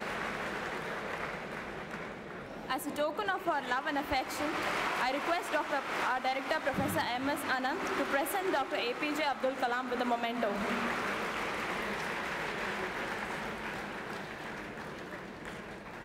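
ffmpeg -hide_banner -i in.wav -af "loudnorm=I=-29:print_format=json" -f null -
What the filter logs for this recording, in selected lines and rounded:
"input_i" : "-34.8",
"input_tp" : "-19.5",
"input_lra" : "7.8",
"input_thresh" : "-44.8",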